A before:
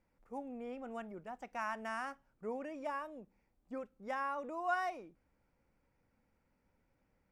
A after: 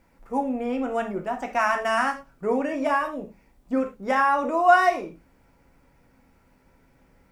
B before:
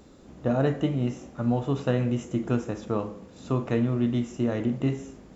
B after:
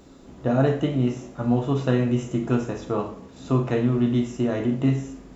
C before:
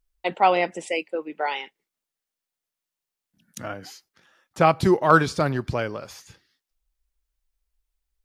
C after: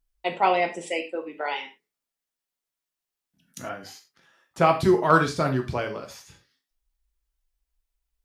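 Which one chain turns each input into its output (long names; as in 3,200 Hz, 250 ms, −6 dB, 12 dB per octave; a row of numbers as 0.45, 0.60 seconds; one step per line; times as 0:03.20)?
reverb whose tail is shaped and stops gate 130 ms falling, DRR 3 dB
loudness normalisation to −24 LKFS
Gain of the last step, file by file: +15.5, +2.0, −3.0 decibels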